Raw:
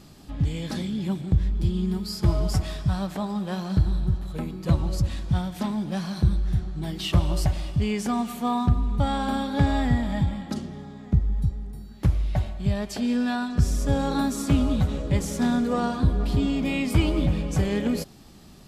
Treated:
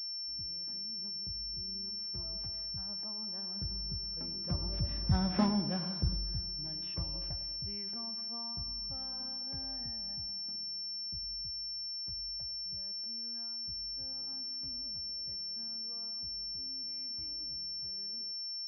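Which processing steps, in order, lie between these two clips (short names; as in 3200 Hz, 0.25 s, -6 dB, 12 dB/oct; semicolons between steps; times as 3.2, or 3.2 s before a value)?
Doppler pass-by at 5.38, 14 m/s, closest 2.3 m; narrowing echo 0.102 s, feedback 57%, band-pass 450 Hz, level -11 dB; pulse-width modulation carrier 5400 Hz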